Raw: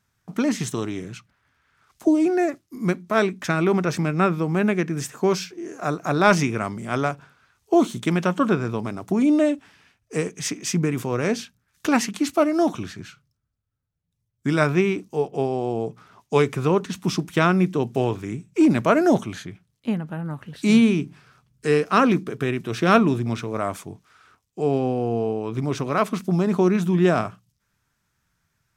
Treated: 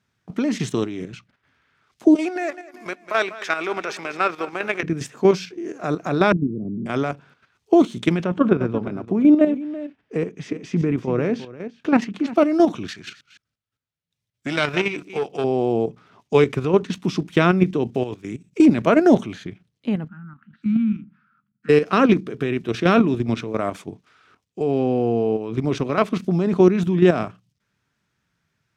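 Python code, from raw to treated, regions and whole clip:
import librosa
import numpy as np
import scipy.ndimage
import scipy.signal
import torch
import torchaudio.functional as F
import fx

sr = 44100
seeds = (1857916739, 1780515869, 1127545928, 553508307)

y = fx.chain(x, sr, fx.highpass(hz=750.0, slope=12),
    fx.leveller(passes=1),
    fx.echo_feedback(ms=194, feedback_pct=47, wet_db=-16), at=(2.15, 4.83))
y = fx.chain(y, sr, fx.cheby2_lowpass(hz=1500.0, order=4, stop_db=70),
    fx.low_shelf(hz=77.0, db=-11.0),
    fx.band_squash(depth_pct=40), at=(6.32, 6.86))
y = fx.chain(y, sr, fx.lowpass(hz=1500.0, slope=6),
    fx.echo_single(ms=348, db=-13.5), at=(8.24, 12.36))
y = fx.chain(y, sr, fx.reverse_delay(ms=165, wet_db=-13.0),
    fx.tilt_shelf(db=-7.0, hz=750.0),
    fx.transformer_sat(knee_hz=2100.0), at=(12.88, 15.44))
y = fx.chain(y, sr, fx.high_shelf(hz=4500.0, db=9.5),
    fx.level_steps(step_db=15), at=(18.03, 18.66))
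y = fx.chain(y, sr, fx.double_bandpass(hz=540.0, octaves=2.7),
    fx.peak_eq(hz=380.0, db=-10.0, octaves=0.51), at=(20.08, 21.69))
y = fx.weighting(y, sr, curve='D')
y = fx.level_steps(y, sr, step_db=9)
y = fx.tilt_shelf(y, sr, db=9.0, hz=1300.0)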